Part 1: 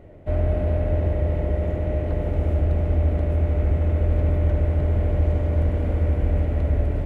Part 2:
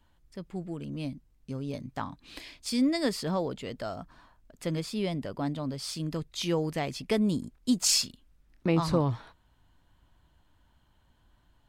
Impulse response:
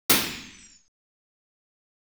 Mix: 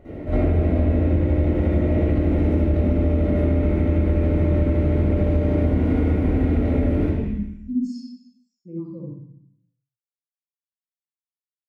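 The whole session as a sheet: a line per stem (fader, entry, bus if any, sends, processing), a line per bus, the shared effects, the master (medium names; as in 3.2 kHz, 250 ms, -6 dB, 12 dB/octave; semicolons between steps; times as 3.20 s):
-3.0 dB, 0.00 s, send -6 dB, none
-10.5 dB, 0.00 s, send -19.5 dB, waveshaping leveller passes 1; spectral contrast expander 2.5:1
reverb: on, RT60 0.70 s, pre-delay 46 ms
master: compression 6:1, threshold -16 dBFS, peak gain reduction 11 dB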